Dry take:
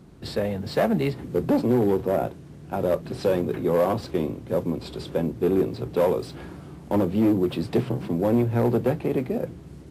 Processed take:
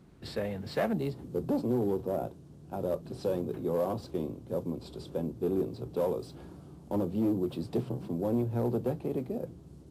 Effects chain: peaking EQ 2 kHz +2.5 dB 1.2 oct, from 0.93 s -10 dB; trim -8 dB

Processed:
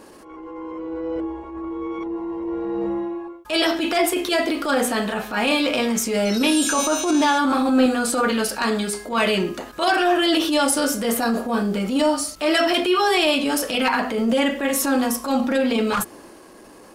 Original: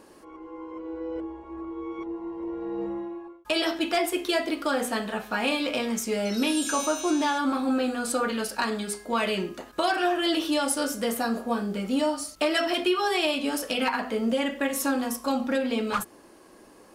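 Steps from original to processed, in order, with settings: 7.42–7.86 s: flutter echo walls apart 7.3 m, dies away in 0.39 s; transient shaper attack -10 dB, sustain +2 dB; trim +7.5 dB

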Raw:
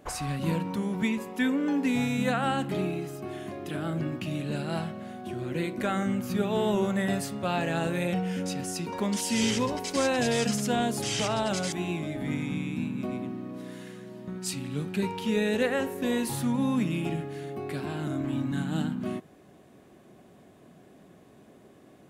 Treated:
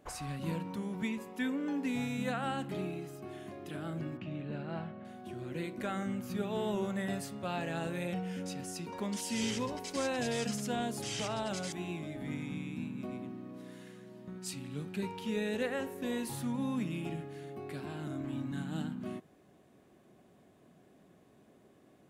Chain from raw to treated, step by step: 4.17–5.05 s: low-pass 2.4 kHz 12 dB/octave; trim -8 dB

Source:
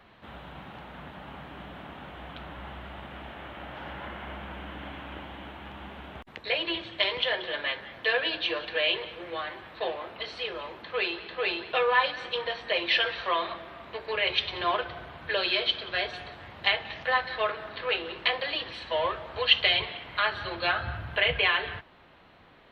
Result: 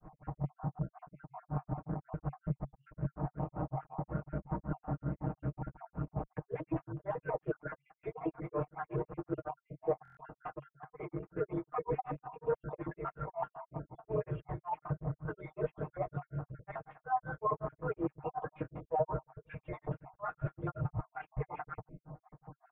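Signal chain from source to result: random holes in the spectrogram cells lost 48%; bass shelf 80 Hz +10.5 dB; in parallel at -4 dB: word length cut 6-bit, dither none; on the sum: peaking EQ 140 Hz +12.5 dB 0.5 oct; granulator 160 ms, grains 5.4 per s, spray 15 ms, pitch spread up and down by 0 st; formant shift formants -3 st; reverse; compression 8:1, threshold -36 dBFS, peak gain reduction 23 dB; reverse; low-pass 1.1 kHz 24 dB/octave; comb 6.5 ms, depth 83%; buffer glitch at 10.03 s, samples 1024, times 5; trim +4 dB

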